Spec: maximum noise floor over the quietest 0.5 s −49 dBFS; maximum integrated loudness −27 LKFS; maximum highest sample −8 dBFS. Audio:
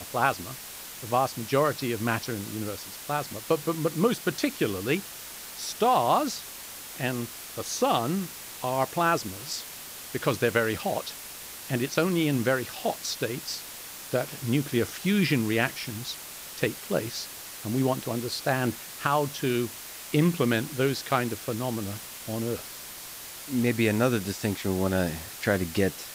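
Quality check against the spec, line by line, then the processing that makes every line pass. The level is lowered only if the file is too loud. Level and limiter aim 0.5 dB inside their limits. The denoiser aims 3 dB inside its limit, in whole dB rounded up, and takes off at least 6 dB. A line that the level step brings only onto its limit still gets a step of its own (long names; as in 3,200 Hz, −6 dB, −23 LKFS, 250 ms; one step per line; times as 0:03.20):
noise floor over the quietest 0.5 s −41 dBFS: out of spec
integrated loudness −28.5 LKFS: in spec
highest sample −9.5 dBFS: in spec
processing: broadband denoise 11 dB, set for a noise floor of −41 dBFS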